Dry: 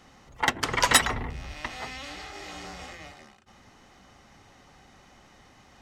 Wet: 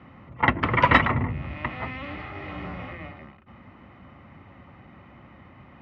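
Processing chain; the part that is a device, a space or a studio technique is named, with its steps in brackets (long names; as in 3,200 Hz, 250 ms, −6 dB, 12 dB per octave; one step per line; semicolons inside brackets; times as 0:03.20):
sub-octave bass pedal (sub-octave generator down 2 octaves, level +1 dB; loudspeaker in its box 84–2,200 Hz, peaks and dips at 430 Hz −8 dB, 780 Hz −8 dB, 1,600 Hz −9 dB)
low-shelf EQ 90 Hz +5.5 dB
level +8.5 dB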